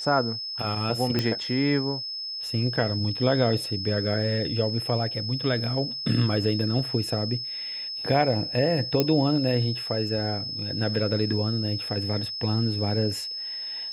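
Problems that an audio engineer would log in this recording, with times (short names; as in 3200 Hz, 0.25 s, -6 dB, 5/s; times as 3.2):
tone 5200 Hz -31 dBFS
1.19 pop -11 dBFS
9 pop -8 dBFS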